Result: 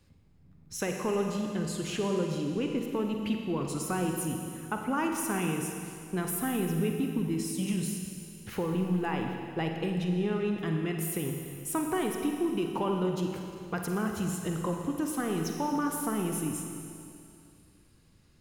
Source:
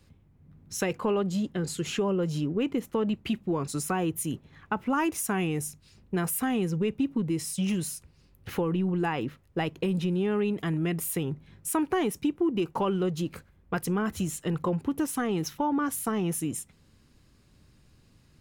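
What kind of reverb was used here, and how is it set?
Schroeder reverb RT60 2.5 s, DRR 2.5 dB; trim -4 dB

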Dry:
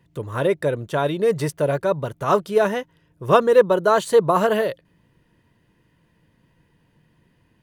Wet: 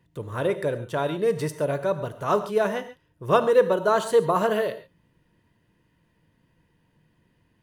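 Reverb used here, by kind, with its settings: gated-style reverb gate 160 ms flat, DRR 10.5 dB; trim -4.5 dB

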